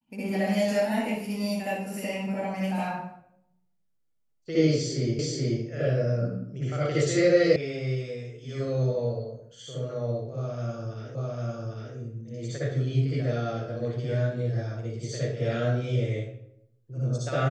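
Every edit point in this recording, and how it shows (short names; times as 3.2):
5.19 repeat of the last 0.43 s
7.56 sound cut off
11.15 repeat of the last 0.8 s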